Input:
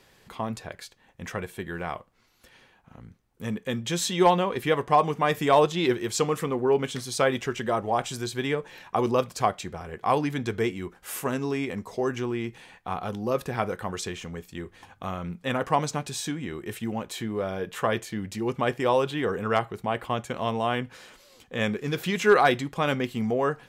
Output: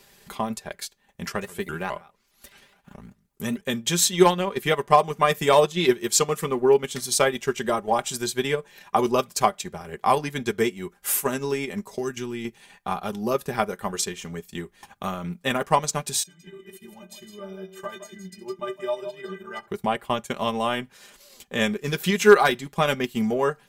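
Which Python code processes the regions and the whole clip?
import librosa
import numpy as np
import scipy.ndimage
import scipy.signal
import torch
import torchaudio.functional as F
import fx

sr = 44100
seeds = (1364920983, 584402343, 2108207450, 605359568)

y = fx.chain(x, sr, fx.echo_single(ms=137, db=-14.0),
    fx.vibrato_shape(shape='saw_up', rate_hz=4.8, depth_cents=250.0), at=(1.27, 3.61))
y = fx.chain(y, sr, fx.highpass(hz=77.0, slope=12),
    fx.peak_eq(hz=700.0, db=-10.5, octaves=2.0), at=(11.98, 12.45))
y = fx.chain(y, sr, fx.high_shelf(hz=9700.0, db=-6.5),
    fx.stiff_resonator(f0_hz=180.0, decay_s=0.31, stiffness=0.03),
    fx.echo_multitap(ms=(67, 160, 163), db=(-14.5, -11.5, -8.5)), at=(16.23, 19.68))
y = fx.high_shelf(y, sr, hz=5800.0, db=11.5)
y = fx.transient(y, sr, attack_db=4, sustain_db=-8)
y = y + 0.55 * np.pad(y, (int(5.0 * sr / 1000.0), 0))[:len(y)]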